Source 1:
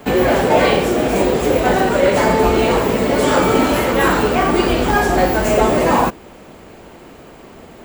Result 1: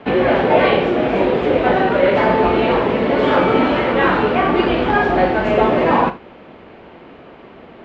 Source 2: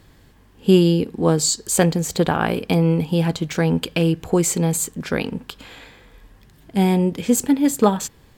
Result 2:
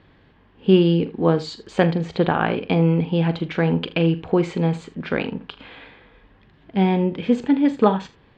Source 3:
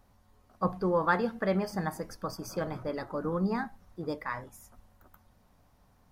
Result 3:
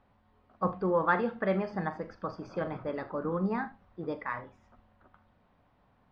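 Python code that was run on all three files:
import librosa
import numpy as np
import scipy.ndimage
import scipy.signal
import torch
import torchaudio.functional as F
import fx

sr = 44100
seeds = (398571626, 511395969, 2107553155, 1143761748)

y = scipy.signal.sosfilt(scipy.signal.butter(4, 3400.0, 'lowpass', fs=sr, output='sos'), x)
y = fx.low_shelf(y, sr, hz=80.0, db=-10.5)
y = fx.room_early_taps(y, sr, ms=(42, 78), db=(-14.0, -18.0))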